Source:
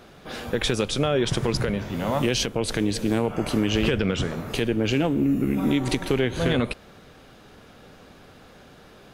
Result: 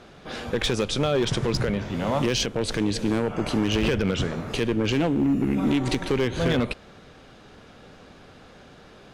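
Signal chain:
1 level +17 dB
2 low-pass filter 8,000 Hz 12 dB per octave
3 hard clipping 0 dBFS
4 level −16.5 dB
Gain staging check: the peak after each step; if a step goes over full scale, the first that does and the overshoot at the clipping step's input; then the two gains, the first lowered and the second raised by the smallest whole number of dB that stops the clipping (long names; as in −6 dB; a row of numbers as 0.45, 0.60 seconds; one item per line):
+7.0, +7.0, 0.0, −16.5 dBFS
step 1, 7.0 dB
step 1 +10 dB, step 4 −9.5 dB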